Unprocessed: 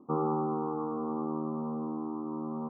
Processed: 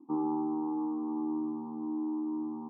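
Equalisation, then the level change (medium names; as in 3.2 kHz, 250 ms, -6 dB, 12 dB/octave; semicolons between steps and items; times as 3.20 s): vowel filter u; +6.5 dB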